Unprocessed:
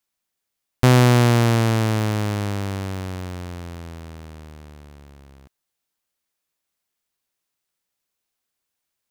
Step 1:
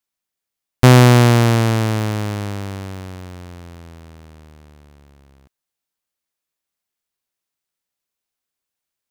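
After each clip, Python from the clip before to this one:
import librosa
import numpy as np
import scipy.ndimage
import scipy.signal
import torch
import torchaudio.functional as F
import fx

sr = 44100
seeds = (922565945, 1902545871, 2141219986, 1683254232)

y = fx.upward_expand(x, sr, threshold_db=-30.0, expansion=1.5)
y = F.gain(torch.from_numpy(y), 6.0).numpy()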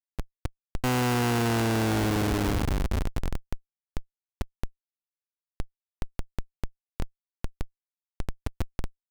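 y = fx.dmg_noise_band(x, sr, seeds[0], low_hz=46.0, high_hz=230.0, level_db=-31.0)
y = fx.fixed_phaser(y, sr, hz=890.0, stages=8)
y = fx.schmitt(y, sr, flips_db=-28.0)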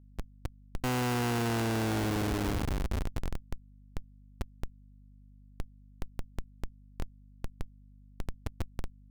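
y = fx.add_hum(x, sr, base_hz=50, snr_db=21)
y = F.gain(torch.from_numpy(y), -5.0).numpy()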